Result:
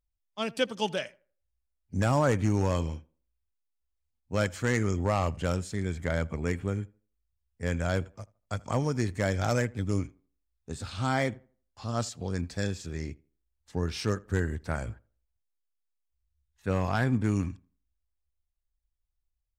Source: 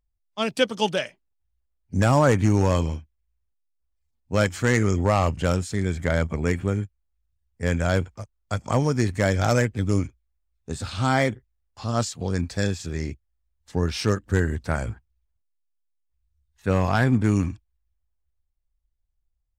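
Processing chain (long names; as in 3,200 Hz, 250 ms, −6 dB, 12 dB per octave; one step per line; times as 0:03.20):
tape delay 81 ms, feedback 31%, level −22 dB, low-pass 1,800 Hz
level −6.5 dB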